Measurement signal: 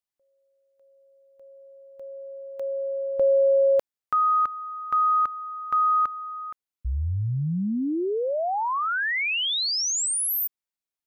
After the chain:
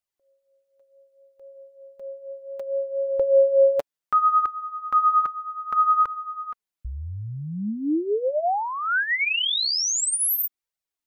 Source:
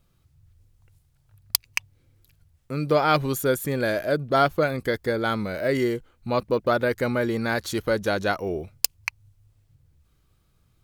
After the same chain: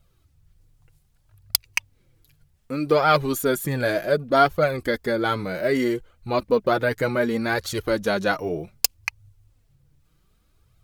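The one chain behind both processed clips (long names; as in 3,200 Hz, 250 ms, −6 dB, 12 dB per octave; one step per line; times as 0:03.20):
flanger 0.65 Hz, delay 1.3 ms, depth 5.9 ms, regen +13%
level +5 dB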